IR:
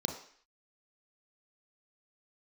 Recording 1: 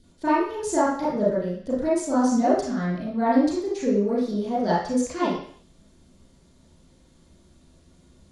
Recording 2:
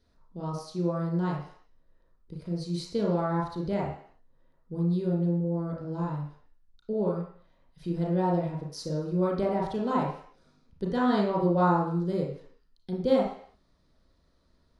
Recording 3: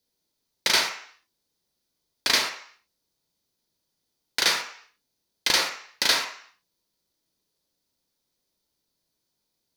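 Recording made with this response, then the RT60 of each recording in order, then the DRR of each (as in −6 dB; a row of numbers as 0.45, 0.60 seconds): 3; 0.55, 0.55, 0.55 seconds; −9.5, −3.5, 2.5 decibels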